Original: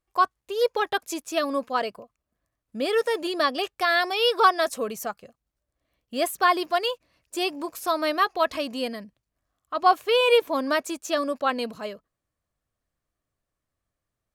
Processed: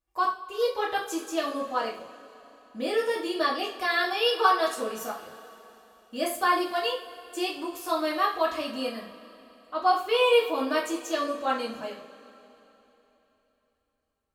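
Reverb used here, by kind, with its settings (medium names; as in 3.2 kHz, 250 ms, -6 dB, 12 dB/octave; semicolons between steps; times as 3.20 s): two-slope reverb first 0.39 s, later 3.5 s, from -21 dB, DRR -5 dB; trim -9 dB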